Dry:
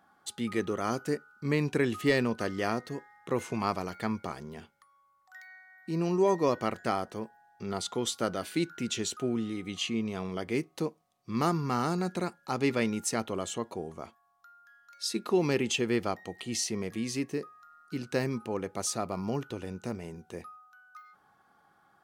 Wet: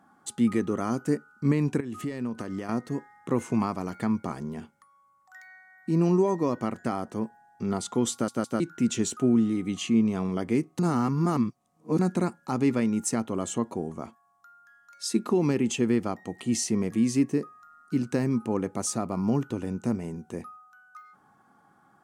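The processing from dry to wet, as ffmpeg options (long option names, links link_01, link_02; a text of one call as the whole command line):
ffmpeg -i in.wav -filter_complex "[0:a]asettb=1/sr,asplit=3[link_01][link_02][link_03];[link_01]atrim=end=1.804[link_04];[link_02]atrim=start=1.8:end=2.69,asetpts=PTS-STARTPTS,afade=type=in:duration=0.004:curve=qsin,afade=type=out:start_time=0.886:duration=0.004:curve=qsin,acompressor=threshold=-35dB:ratio=12:attack=3.2:release=140:knee=1:detection=peak[link_05];[link_03]atrim=start=2.686[link_06];[link_04][link_05]acrossfade=duration=0.004:curve1=hsin:curve2=qsin[link_07];[link_07][link_06]acrossfade=duration=0.004:curve1=qsin:curve2=hsin,asplit=6[link_08][link_09][link_10][link_11][link_12][link_13];[link_08]atrim=end=8.282[link_14];[link_09]atrim=start=8.118:end=8.282[link_15];[link_10]atrim=start=8.118:end=8.282[link_16];[link_11]atrim=start=8.598:end=10.792[link_17];[link_12]atrim=start=10.788:end=11.992,asetpts=PTS-STARTPTS,areverse[link_18];[link_13]atrim=start=11.988[link_19];[link_14][link_15]acrossfade=duration=0.004:curve1=hsin:curve2=hsin[link_20];[link_20][link_16]acrossfade=duration=0.004:curve1=hsin:curve2=hsin[link_21];[link_21][link_17]acrossfade=duration=0.004:curve1=hsin:curve2=hsin[link_22];[link_22][link_18]acrossfade=duration=0.004:curve1=hsin:curve2=hsin[link_23];[link_23][link_19]acrossfade=duration=0.004:curve1=hsin:curve2=hsin,highshelf=frequency=11000:gain=-4,alimiter=limit=-20dB:level=0:latency=1:release=326,equalizer=frequency=125:width_type=o:width=1:gain=6,equalizer=frequency=250:width_type=o:width=1:gain=10,equalizer=frequency=1000:width_type=o:width=1:gain=4,equalizer=frequency=4000:width_type=o:width=1:gain=-5,equalizer=frequency=8000:width_type=o:width=1:gain=7" out.wav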